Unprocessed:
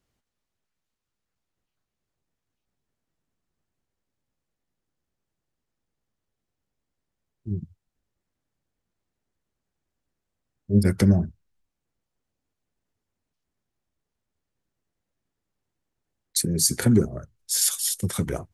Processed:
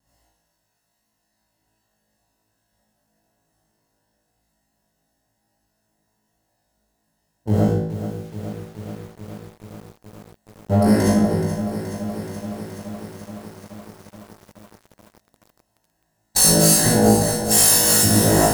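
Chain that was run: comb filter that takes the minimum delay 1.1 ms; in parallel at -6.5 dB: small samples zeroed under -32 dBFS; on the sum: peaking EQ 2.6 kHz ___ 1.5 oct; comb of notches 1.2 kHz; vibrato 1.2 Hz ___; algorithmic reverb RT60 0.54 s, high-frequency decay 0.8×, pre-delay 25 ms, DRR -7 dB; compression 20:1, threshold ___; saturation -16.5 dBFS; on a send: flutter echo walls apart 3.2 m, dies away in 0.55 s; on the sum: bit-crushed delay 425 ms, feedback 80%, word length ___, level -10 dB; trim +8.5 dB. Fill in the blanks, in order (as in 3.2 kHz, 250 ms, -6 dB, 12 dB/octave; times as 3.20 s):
-6.5 dB, 14 cents, -23 dBFS, 8-bit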